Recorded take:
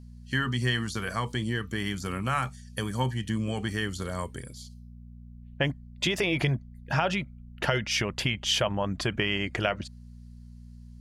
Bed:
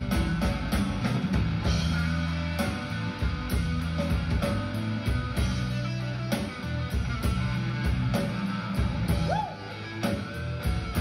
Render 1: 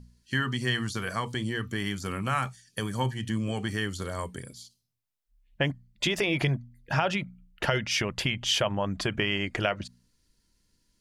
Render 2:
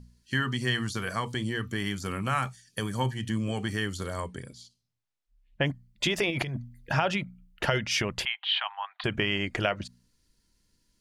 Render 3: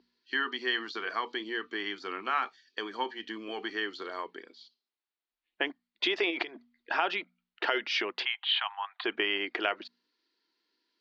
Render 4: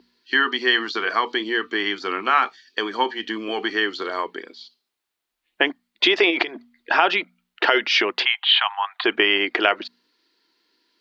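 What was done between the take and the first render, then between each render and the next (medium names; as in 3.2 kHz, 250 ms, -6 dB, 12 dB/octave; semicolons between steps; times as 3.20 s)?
de-hum 60 Hz, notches 4
4.20–5.66 s: distance through air 53 m; 6.30–6.94 s: compressor with a negative ratio -31 dBFS; 8.25–9.04 s: Chebyshev band-pass 760–4100 Hz, order 5
elliptic band-pass 330–4300 Hz, stop band 40 dB; peaking EQ 560 Hz -10 dB 0.26 oct
trim +11.5 dB; peak limiter -2 dBFS, peak gain reduction 1 dB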